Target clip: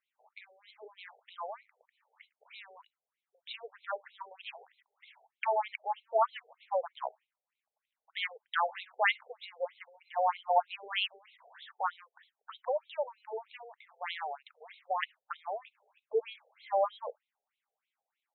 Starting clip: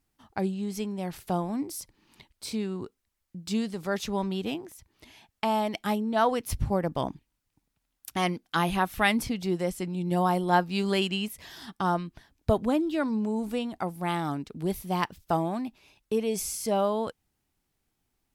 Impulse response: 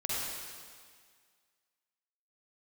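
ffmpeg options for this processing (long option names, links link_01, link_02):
-filter_complex "[0:a]asplit=2[link_01][link_02];[1:a]atrim=start_sample=2205,atrim=end_sample=3528[link_03];[link_02][link_03]afir=irnorm=-1:irlink=0,volume=-26dB[link_04];[link_01][link_04]amix=inputs=2:normalize=0,afftfilt=real='re*between(b*sr/1024,570*pow(3000/570,0.5+0.5*sin(2*PI*3.2*pts/sr))/1.41,570*pow(3000/570,0.5+0.5*sin(2*PI*3.2*pts/sr))*1.41)':imag='im*between(b*sr/1024,570*pow(3000/570,0.5+0.5*sin(2*PI*3.2*pts/sr))/1.41,570*pow(3000/570,0.5+0.5*sin(2*PI*3.2*pts/sr))*1.41)':win_size=1024:overlap=0.75"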